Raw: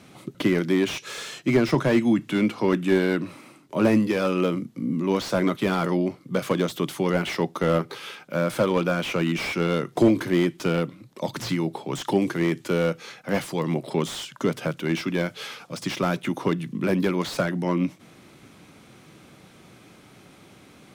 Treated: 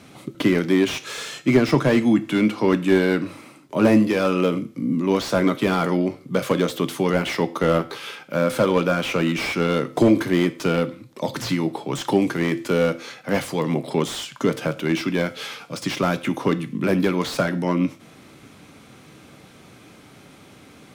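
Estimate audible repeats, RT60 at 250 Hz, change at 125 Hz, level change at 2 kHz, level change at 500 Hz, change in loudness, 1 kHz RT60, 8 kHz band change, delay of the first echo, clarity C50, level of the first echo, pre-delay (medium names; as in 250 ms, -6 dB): no echo, 0.40 s, +2.0 dB, +3.0 dB, +3.0 dB, +3.0 dB, 0.45 s, +3.5 dB, no echo, 18.0 dB, no echo, 4 ms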